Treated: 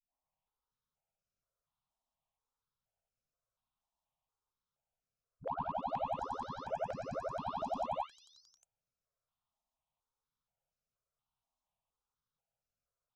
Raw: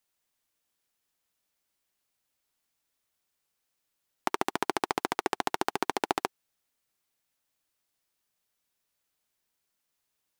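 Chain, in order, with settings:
every frequency bin delayed by itself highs late, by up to 570 ms
notch filter 5,700 Hz, Q 7.4
hard clipping −30 dBFS, distortion −13 dB
speed change −21%
head-to-tape spacing loss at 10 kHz 27 dB
phaser with its sweep stopped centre 790 Hz, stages 4
step-sequenced phaser 4.2 Hz 480–3,400 Hz
level +4 dB

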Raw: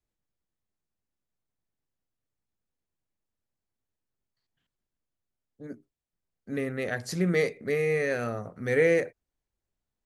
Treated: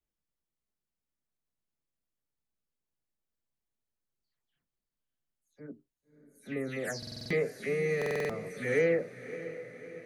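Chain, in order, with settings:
every frequency bin delayed by itself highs early, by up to 217 ms
feedback delay with all-pass diffusion 602 ms, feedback 56%, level −13 dB
buffer that repeats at 0:06.98/0:07.97, samples 2,048, times 6
level −4 dB

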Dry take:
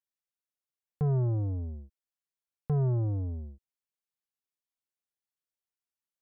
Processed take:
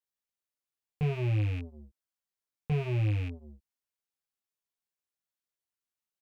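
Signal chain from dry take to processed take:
loose part that buzzes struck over −30 dBFS, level −32 dBFS
double-tracking delay 19 ms −2.5 dB
level −2.5 dB

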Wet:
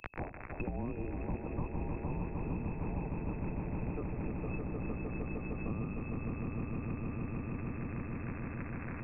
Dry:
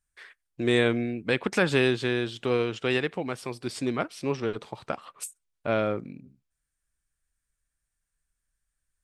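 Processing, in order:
noise gate −48 dBFS, range −13 dB
inverse Chebyshev band-stop filter 220–850 Hz, stop band 80 dB
tilt shelving filter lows −9 dB, about 740 Hz
brickwall limiter −31 dBFS, peak gain reduction 16.5 dB
surface crackle 44 per second −50 dBFS
echo that builds up and dies away 153 ms, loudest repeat 5, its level −6.5 dB
voice inversion scrambler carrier 2,600 Hz
multiband upward and downward compressor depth 100%
level +16 dB

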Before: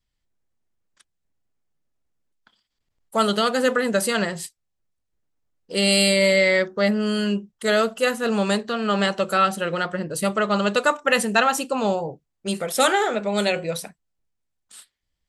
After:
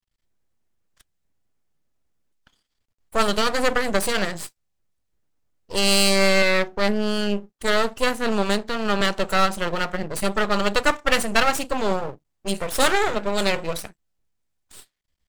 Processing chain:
0:06.42–0:09.01: Chebyshev high-pass filter 220 Hz, order 2
half-wave rectification
level +3.5 dB

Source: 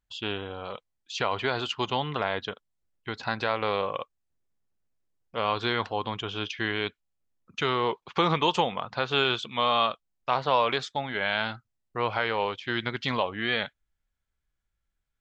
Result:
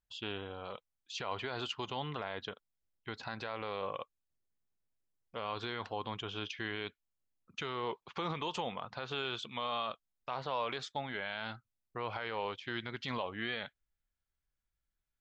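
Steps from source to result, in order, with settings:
brickwall limiter −18.5 dBFS, peak gain reduction 9 dB
level −7 dB

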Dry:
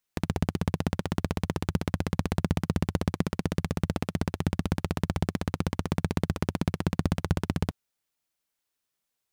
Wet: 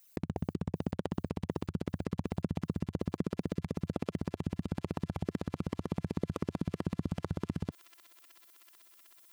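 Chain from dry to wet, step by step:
spectral envelope exaggerated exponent 2
in parallel at −1 dB: brickwall limiter −23 dBFS, peak gain reduction 11 dB
on the sum: RIAA equalisation recording
delay with a high-pass on its return 376 ms, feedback 84%, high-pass 2,600 Hz, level −7.5 dB

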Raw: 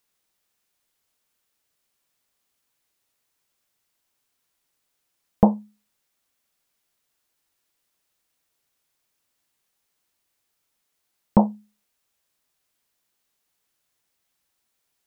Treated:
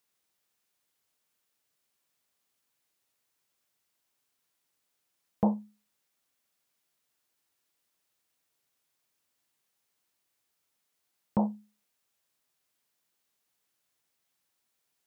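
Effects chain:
brickwall limiter −12 dBFS, peak gain reduction 9.5 dB
high-pass filter 79 Hz
level −3.5 dB

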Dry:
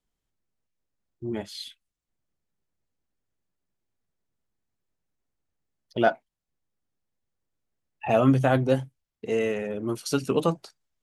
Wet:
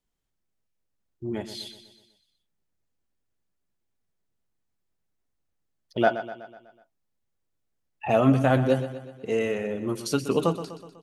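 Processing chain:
repeating echo 124 ms, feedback 53%, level −12 dB

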